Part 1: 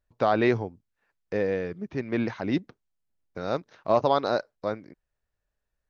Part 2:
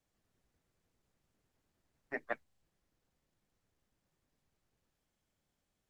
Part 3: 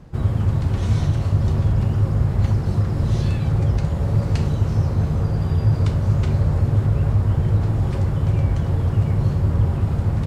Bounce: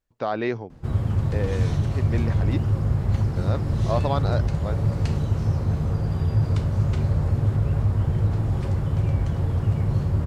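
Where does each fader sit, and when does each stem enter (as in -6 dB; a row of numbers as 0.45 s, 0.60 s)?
-3.5 dB, -5.5 dB, -3.5 dB; 0.00 s, 0.00 s, 0.70 s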